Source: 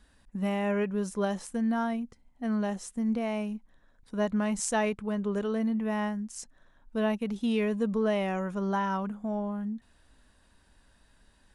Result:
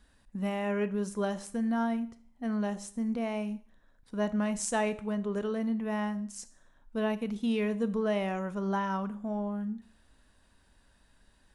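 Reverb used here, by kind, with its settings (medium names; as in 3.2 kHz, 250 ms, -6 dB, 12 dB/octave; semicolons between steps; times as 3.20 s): Schroeder reverb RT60 0.5 s, combs from 27 ms, DRR 14 dB; trim -2 dB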